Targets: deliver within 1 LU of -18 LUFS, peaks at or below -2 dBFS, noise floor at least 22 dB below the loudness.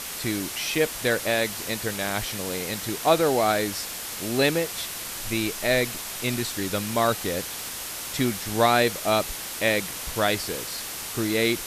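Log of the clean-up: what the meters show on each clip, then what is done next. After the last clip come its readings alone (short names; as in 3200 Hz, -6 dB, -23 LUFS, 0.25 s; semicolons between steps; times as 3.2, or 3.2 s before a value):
noise floor -35 dBFS; noise floor target -48 dBFS; loudness -25.5 LUFS; peak -6.5 dBFS; loudness target -18.0 LUFS
-> denoiser 13 dB, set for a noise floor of -35 dBFS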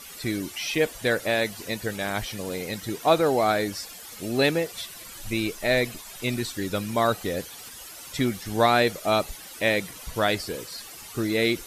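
noise floor -43 dBFS; noise floor target -48 dBFS
-> denoiser 6 dB, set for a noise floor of -43 dBFS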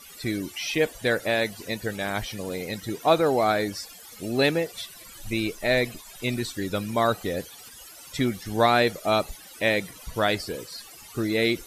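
noise floor -46 dBFS; noise floor target -48 dBFS
-> denoiser 6 dB, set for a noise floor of -46 dBFS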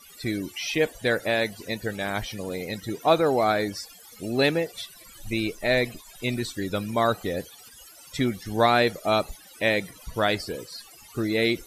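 noise floor -49 dBFS; loudness -26.0 LUFS; peak -6.5 dBFS; loudness target -18.0 LUFS
-> gain +8 dB; limiter -2 dBFS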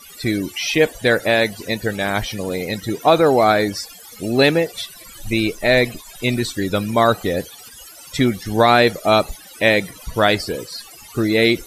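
loudness -18.5 LUFS; peak -2.0 dBFS; noise floor -41 dBFS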